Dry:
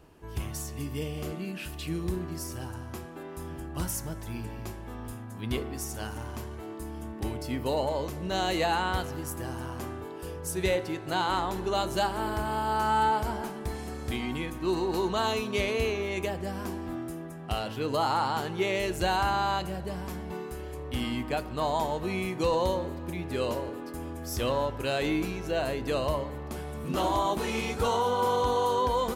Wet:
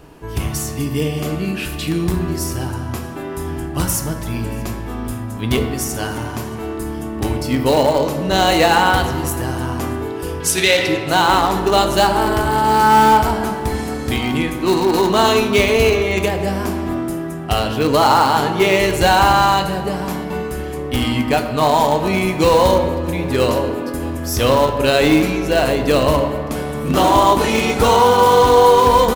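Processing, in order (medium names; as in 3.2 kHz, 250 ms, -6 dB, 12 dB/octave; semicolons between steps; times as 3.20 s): in parallel at -10 dB: bit crusher 4-bit; on the sum: saturation -17.5 dBFS, distortion -18 dB; 10.40–10.86 s: frequency weighting D; delay 630 ms -24 dB; on a send at -6 dB: reverberation RT60 1.7 s, pre-delay 4 ms; on the sum: loudness maximiser +14 dB; trim -1 dB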